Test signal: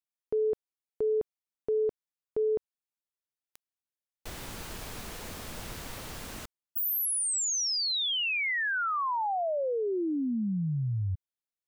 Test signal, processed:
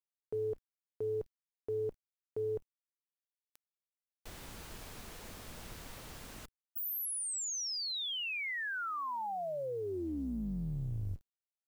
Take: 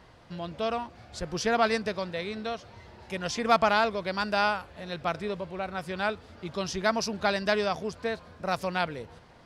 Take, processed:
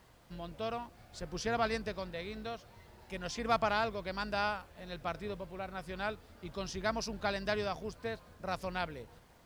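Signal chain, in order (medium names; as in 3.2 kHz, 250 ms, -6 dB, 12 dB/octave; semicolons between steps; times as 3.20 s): octave divider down 2 oct, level -5 dB; word length cut 10-bit, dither none; trim -8 dB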